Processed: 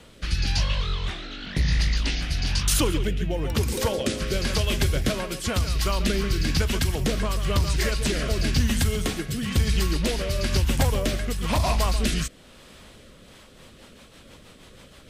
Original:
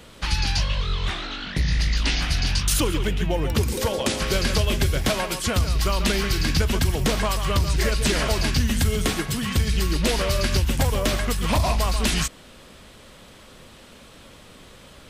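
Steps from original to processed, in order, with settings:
0:01.31–0:02.09: surface crackle 22 per second → 100 per second −41 dBFS
rotating-speaker cabinet horn 1 Hz, later 6.3 Hz, at 0:13.00

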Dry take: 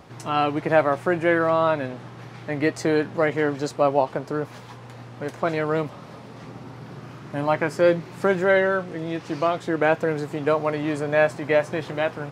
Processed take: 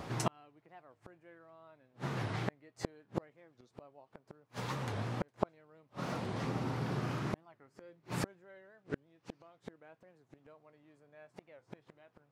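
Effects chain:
gate with flip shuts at −21 dBFS, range −41 dB
wow of a warped record 45 rpm, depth 250 cents
level +3 dB

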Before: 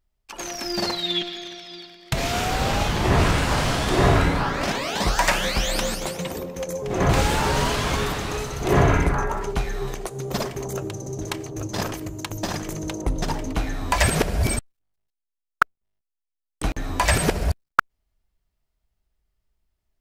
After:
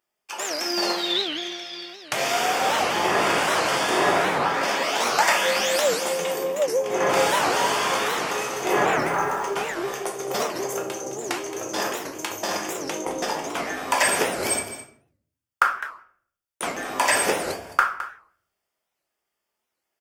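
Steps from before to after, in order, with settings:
high-pass filter 450 Hz 12 dB per octave
notch filter 4,000 Hz, Q 5.8
in parallel at 0 dB: downward compressor, threshold −30 dBFS, peak gain reduction 18 dB
0:08.99–0:09.49: on the sum: log-companded quantiser 6 bits
on a send: single-tap delay 213 ms −13 dB
on the sum: rectangular room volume 73 cubic metres, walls mixed, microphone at 0.8 metres
wow of a warped record 78 rpm, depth 250 cents
level −3.5 dB

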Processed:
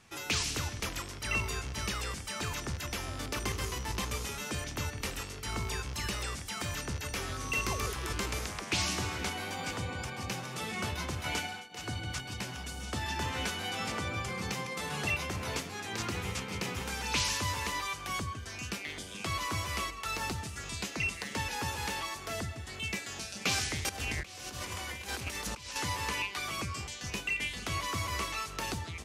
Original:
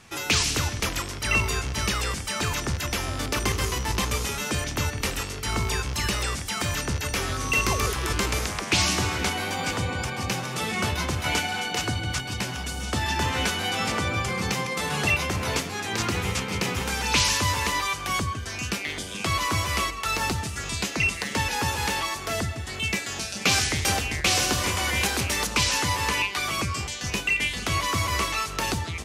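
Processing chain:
0:11.45–0:11.93: duck −17 dB, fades 0.24 s
0:23.89–0:25.76: compressor whose output falls as the input rises −29 dBFS, ratio −0.5
level −9 dB

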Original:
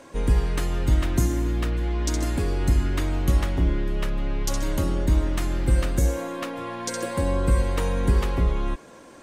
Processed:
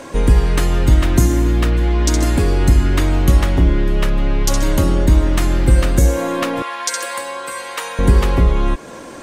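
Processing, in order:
in parallel at +1 dB: downward compressor, threshold −30 dBFS, peak gain reduction 14.5 dB
0:06.62–0:07.99: on the sum: high-pass filter 990 Hz 12 dB per octave
level +6.5 dB

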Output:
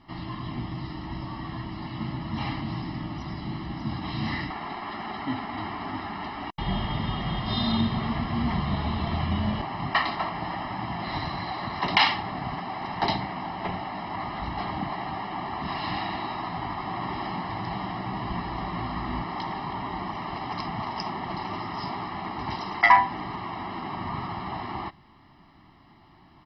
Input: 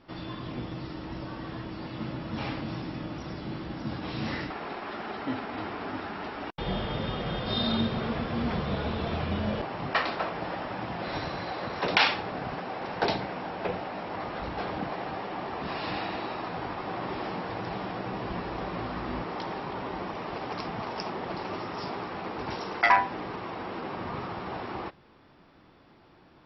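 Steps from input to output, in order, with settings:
comb filter 1 ms, depth 86%

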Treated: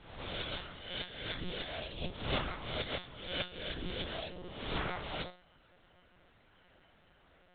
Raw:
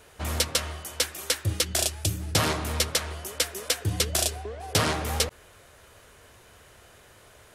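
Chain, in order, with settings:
peak hold with a rise ahead of every peak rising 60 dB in 0.86 s
0:01.97–0:03.54: transient designer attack +9 dB, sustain −5 dB
tuned comb filter 200 Hz, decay 0.35 s, harmonics all, mix 80%
one-pitch LPC vocoder at 8 kHz 180 Hz
level −3 dB

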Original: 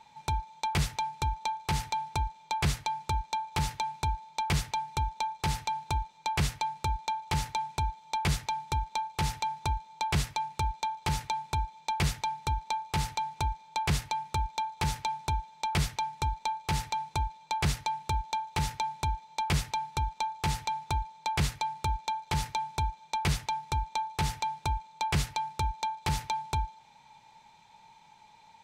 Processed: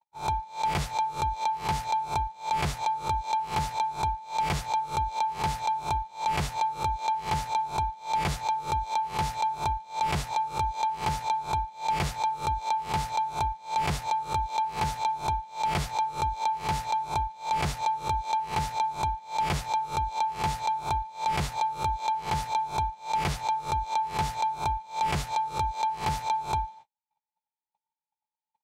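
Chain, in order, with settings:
peak hold with a rise ahead of every peak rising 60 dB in 0.34 s
noise gate −49 dBFS, range −46 dB
parametric band 750 Hz +9 dB 1.7 octaves
level −4 dB

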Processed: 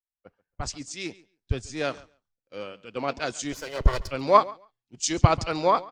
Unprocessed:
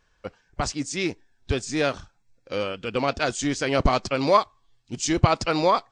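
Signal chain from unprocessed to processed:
0:03.52–0:04.09: lower of the sound and its delayed copy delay 2 ms
repeating echo 139 ms, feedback 26%, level −18 dB
multiband upward and downward expander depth 100%
level −5.5 dB

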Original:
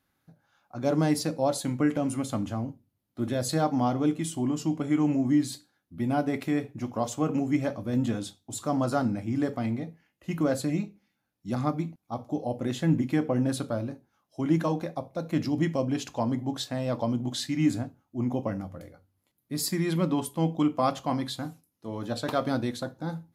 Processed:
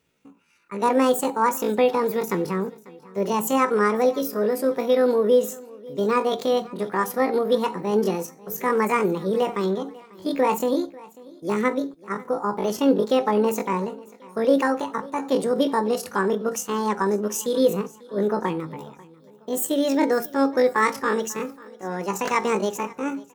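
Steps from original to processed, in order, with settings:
low-shelf EQ 110 Hz +2.5 dB
pitch shifter +9 semitones
repeating echo 543 ms, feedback 41%, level −22 dB
level +5 dB

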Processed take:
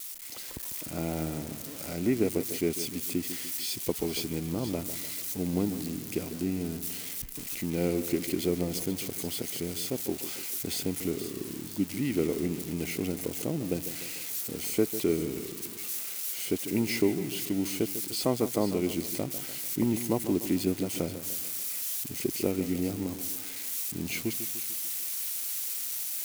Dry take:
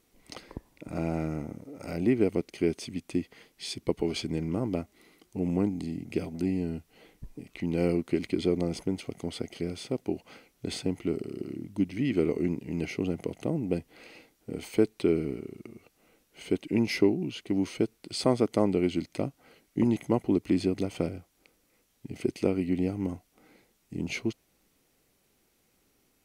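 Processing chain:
spike at every zero crossing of −26 dBFS
automatic gain control gain up to 6 dB
on a send: echo with a time of its own for lows and highs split 2,700 Hz, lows 148 ms, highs 480 ms, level −11.5 dB
on the sum: level −8 dB

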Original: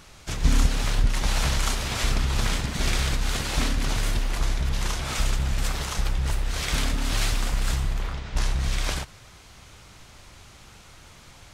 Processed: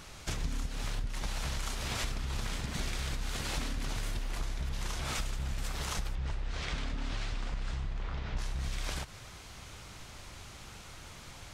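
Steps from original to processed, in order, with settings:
downward compressor 12 to 1, threshold −31 dBFS, peak gain reduction 17.5 dB
0:06.15–0:08.39: high-frequency loss of the air 110 metres

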